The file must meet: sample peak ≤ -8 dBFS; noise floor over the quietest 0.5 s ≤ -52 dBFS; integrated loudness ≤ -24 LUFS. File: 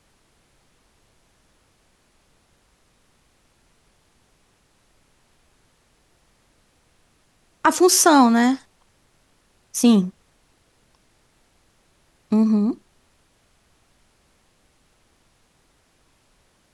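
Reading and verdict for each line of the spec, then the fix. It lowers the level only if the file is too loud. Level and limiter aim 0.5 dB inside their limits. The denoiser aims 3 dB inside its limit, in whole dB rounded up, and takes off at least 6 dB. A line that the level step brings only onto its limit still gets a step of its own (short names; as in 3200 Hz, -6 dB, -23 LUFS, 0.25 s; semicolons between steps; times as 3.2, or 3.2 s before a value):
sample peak -4.0 dBFS: fail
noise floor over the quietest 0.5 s -62 dBFS: OK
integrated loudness -18.0 LUFS: fail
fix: gain -6.5 dB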